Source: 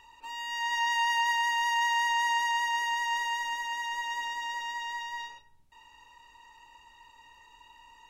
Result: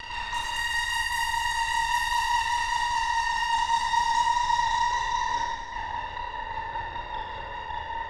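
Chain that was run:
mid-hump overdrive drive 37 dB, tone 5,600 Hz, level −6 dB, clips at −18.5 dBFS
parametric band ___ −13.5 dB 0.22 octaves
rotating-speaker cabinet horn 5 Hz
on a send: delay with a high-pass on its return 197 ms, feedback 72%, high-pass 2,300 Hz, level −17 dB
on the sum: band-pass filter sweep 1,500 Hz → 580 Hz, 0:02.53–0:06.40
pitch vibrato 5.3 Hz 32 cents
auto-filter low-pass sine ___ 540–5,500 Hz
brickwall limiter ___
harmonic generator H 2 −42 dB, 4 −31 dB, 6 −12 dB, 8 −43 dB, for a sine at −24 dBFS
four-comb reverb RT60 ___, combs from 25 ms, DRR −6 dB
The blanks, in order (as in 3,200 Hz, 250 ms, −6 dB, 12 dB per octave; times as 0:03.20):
1,700 Hz, 8.9 Hz, −24 dBFS, 1.6 s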